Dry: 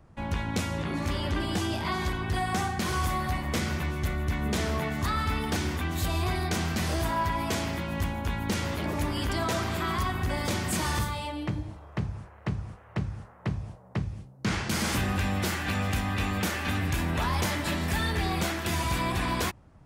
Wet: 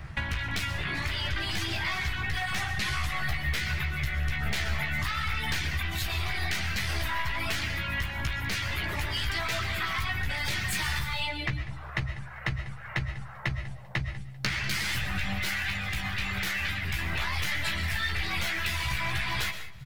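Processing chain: one-sided wavefolder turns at -26.5 dBFS; 2.62–3.23 s: low-pass 12 kHz 12 dB/octave; reverb removal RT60 1 s; graphic EQ 125/250/500/1000/2000/4000/8000 Hz +4/-12/-8/-4/+9/+4/-4 dB; in parallel at +1 dB: peak limiter -26.5 dBFS, peak gain reduction 10 dB; on the sum: compression 16:1, threshold -37 dBFS, peak gain reduction 16.5 dB; doubling 15 ms -5.5 dB; feedback delay 196 ms, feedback 27%, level -17.5 dB; on a send at -10 dB: reverberation RT60 0.40 s, pre-delay 85 ms; on the sum: trim +8.5 dB

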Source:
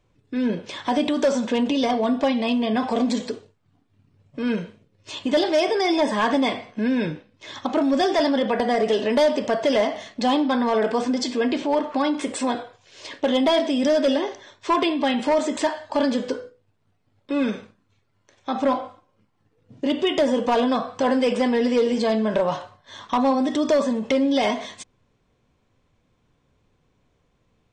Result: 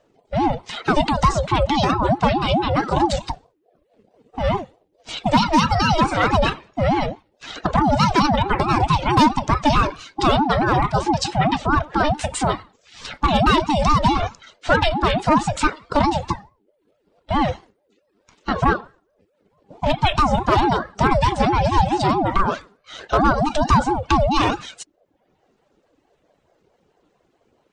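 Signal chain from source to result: coarse spectral quantiser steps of 15 dB; reverb removal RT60 0.69 s; ring modulator with a swept carrier 450 Hz, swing 35%, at 4.6 Hz; trim +7.5 dB

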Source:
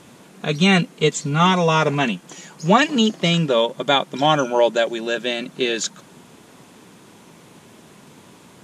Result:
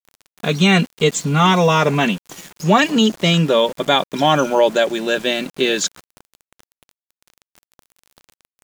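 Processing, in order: in parallel at +1 dB: peak limiter -11 dBFS, peak gain reduction 9 dB; on the sum: small samples zeroed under -30 dBFS; trim -2.5 dB

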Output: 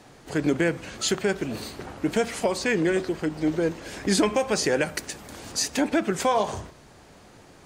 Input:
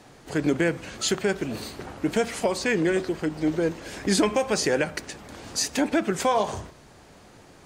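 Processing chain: 4.81–5.52 s: treble shelf 7.9 kHz +11.5 dB

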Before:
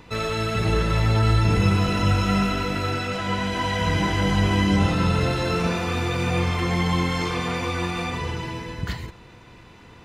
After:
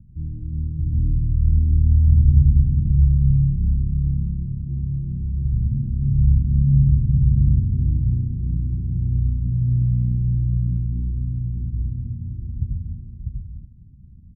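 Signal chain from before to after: inverse Chebyshev low-pass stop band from 850 Hz, stop band 60 dB; tape speed -30%; delay 647 ms -4 dB; trim +4 dB

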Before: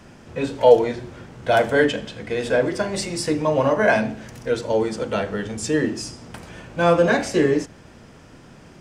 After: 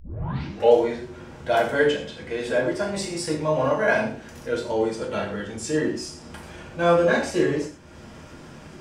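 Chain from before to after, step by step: tape start-up on the opening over 0.72 s; gated-style reverb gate 150 ms falling, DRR -2 dB; upward compressor, threshold -27 dBFS; trim -7 dB

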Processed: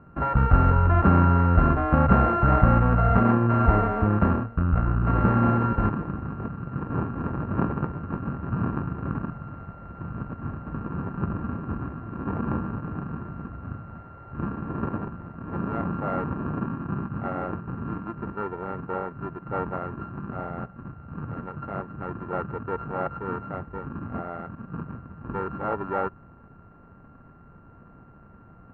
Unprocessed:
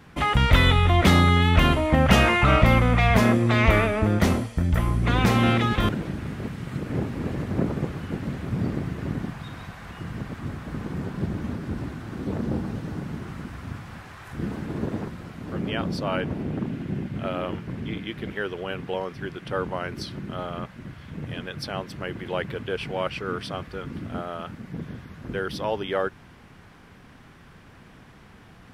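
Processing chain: sorted samples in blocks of 32 samples; low-pass 1.5 kHz 24 dB/octave

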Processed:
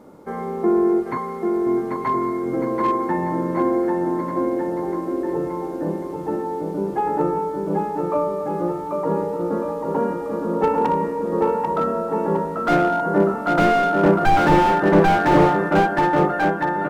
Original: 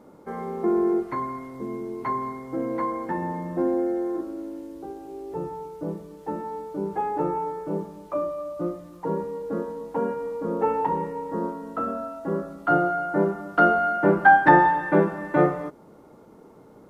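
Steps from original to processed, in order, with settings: 1.17–1.67 s: high-pass 1.4 kHz; bouncing-ball echo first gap 790 ms, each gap 0.9×, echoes 5; slew-rate limiter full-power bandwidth 96 Hz; trim +4.5 dB

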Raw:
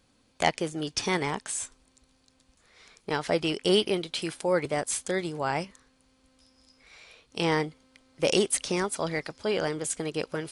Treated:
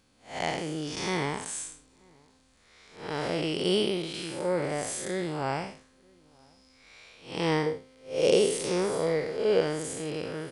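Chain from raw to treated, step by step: spectral blur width 188 ms; 7.66–9.61 s: peaking EQ 470 Hz +11.5 dB 0.43 oct; echo from a far wall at 160 m, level -29 dB; trim +2 dB

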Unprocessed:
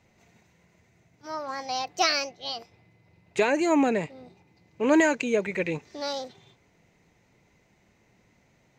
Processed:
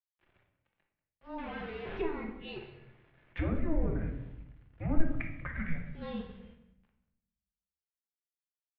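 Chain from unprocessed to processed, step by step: 1.38–1.99 s: one-bit comparator; low-pass that closes with the level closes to 950 Hz, closed at -19.5 dBFS; gate with hold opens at -52 dBFS; 2.56–3.39 s: waveshaping leveller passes 2; 5.03–5.48 s: compressor with a negative ratio -35 dBFS, ratio -0.5; bit crusher 9-bit; vibrato 2.9 Hz 15 cents; mistuned SSB -330 Hz 240–3300 Hz; delay 189 ms -17 dB; simulated room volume 250 m³, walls mixed, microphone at 0.84 m; trim -9 dB

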